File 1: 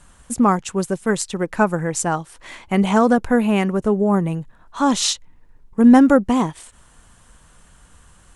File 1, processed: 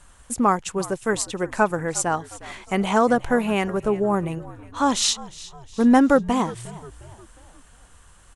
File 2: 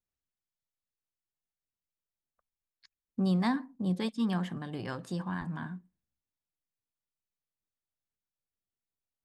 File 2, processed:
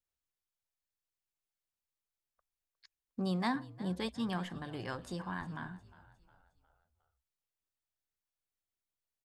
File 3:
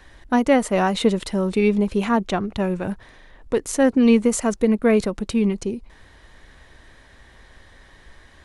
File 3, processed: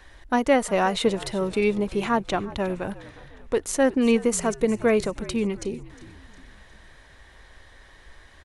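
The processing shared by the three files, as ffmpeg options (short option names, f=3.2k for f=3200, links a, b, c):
-filter_complex "[0:a]equalizer=f=190:t=o:w=1.4:g=-6,asplit=2[a][b];[b]asplit=4[c][d][e][f];[c]adelay=358,afreqshift=-61,volume=-18.5dB[g];[d]adelay=716,afreqshift=-122,volume=-24.9dB[h];[e]adelay=1074,afreqshift=-183,volume=-31.3dB[i];[f]adelay=1432,afreqshift=-244,volume=-37.6dB[j];[g][h][i][j]amix=inputs=4:normalize=0[k];[a][k]amix=inputs=2:normalize=0,volume=-1dB"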